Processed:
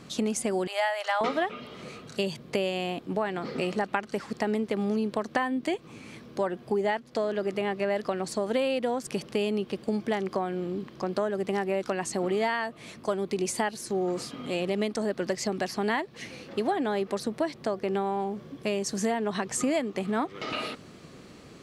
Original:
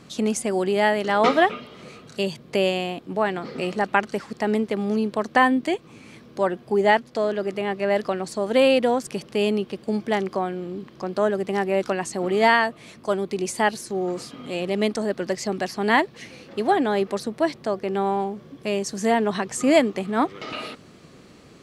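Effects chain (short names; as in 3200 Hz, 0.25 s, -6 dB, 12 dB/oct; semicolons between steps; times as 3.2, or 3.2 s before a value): 0.67–1.21 steep high-pass 590 Hz 48 dB/oct; compressor 6:1, threshold -24 dBFS, peak gain reduction 12.5 dB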